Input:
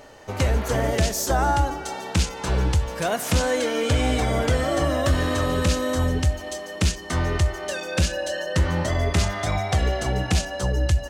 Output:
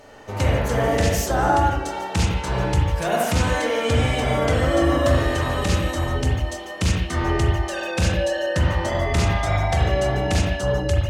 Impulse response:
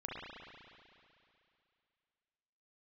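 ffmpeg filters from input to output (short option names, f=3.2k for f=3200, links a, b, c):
-filter_complex "[1:a]atrim=start_sample=2205,afade=t=out:st=0.22:d=0.01,atrim=end_sample=10143,asetrate=40131,aresample=44100[a];[0:a][a]afir=irnorm=-1:irlink=0,volume=3dB"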